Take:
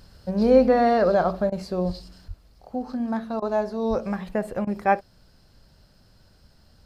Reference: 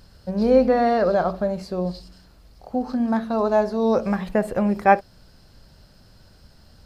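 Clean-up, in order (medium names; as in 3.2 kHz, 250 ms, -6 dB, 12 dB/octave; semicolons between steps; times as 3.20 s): 1.86–1.98 s: high-pass 140 Hz 24 dB/octave; 2.27–2.39 s: high-pass 140 Hz 24 dB/octave; 3.89–4.01 s: high-pass 140 Hz 24 dB/octave; interpolate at 1.50/3.40/4.65 s, 20 ms; 2.28 s: gain correction +5 dB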